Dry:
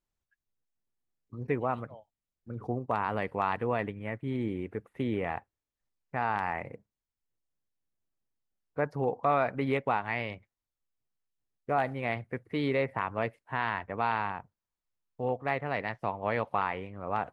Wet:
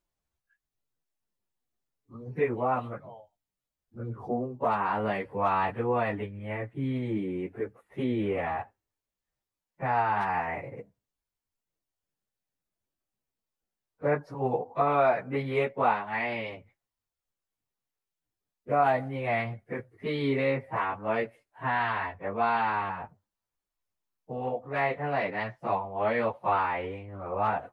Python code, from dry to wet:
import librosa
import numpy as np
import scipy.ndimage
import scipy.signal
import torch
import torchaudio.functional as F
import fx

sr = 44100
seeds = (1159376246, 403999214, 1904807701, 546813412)

y = fx.peak_eq(x, sr, hz=710.0, db=3.0, octaves=1.6)
y = fx.stretch_vocoder_free(y, sr, factor=1.6)
y = y * librosa.db_to_amplitude(3.5)